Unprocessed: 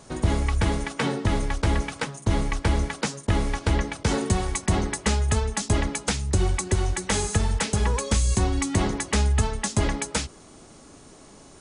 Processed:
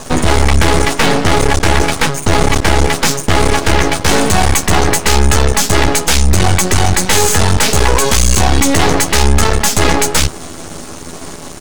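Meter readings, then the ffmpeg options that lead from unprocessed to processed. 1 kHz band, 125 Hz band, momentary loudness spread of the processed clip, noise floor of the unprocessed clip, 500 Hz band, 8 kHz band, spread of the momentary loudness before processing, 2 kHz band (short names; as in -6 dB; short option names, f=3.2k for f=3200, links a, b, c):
+16.0 dB, +10.0 dB, 4 LU, -49 dBFS, +14.5 dB, +15.5 dB, 4 LU, +16.0 dB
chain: -filter_complex "[0:a]asplit=2[a][b];[b]adelay=12,volume=-3.5dB[c];[a][c]amix=inputs=2:normalize=0,apsyclip=24.5dB,aeval=exprs='max(val(0),0)':c=same,volume=-2dB"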